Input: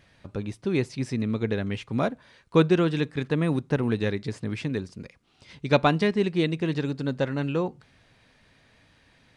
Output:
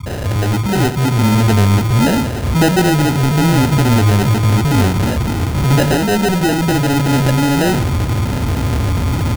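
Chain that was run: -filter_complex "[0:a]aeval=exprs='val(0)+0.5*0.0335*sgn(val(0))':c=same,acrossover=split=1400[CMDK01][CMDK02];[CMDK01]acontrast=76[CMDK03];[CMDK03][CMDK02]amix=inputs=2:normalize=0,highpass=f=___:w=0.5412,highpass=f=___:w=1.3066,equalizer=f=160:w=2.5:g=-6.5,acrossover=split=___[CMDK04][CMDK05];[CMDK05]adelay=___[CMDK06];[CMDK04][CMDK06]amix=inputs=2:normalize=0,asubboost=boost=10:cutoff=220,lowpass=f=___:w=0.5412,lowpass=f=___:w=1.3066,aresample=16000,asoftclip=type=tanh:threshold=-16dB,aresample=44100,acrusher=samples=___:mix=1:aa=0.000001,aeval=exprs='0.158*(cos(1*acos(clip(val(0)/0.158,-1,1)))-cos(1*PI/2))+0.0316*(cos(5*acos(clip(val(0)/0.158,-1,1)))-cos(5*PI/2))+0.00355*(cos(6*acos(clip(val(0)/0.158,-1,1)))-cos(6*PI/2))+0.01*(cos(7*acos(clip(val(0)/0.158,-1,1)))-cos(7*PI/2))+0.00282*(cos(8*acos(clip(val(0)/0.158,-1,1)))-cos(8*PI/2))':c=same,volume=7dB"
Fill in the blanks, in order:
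64, 64, 180, 60, 1800, 1800, 39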